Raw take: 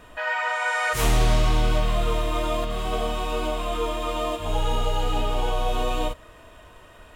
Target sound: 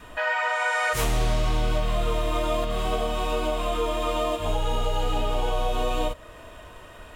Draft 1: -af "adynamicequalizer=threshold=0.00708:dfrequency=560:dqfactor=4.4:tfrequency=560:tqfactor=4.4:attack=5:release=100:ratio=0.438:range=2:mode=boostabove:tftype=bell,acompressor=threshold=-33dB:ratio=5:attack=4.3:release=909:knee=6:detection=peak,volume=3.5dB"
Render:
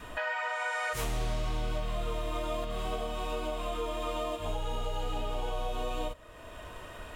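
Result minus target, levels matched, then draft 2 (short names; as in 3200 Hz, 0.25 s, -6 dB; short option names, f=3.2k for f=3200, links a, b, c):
compressor: peak gain reduction +9 dB
-af "adynamicequalizer=threshold=0.00708:dfrequency=560:dqfactor=4.4:tfrequency=560:tqfactor=4.4:attack=5:release=100:ratio=0.438:range=2:mode=boostabove:tftype=bell,acompressor=threshold=-22dB:ratio=5:attack=4.3:release=909:knee=6:detection=peak,volume=3.5dB"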